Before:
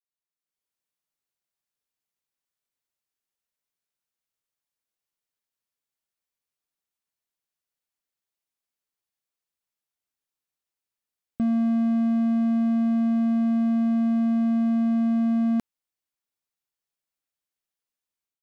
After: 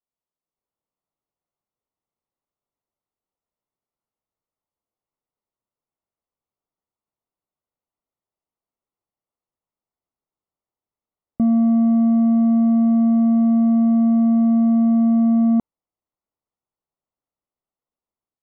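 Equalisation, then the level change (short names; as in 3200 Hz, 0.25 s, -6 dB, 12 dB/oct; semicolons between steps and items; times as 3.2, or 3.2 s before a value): polynomial smoothing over 65 samples; +6.5 dB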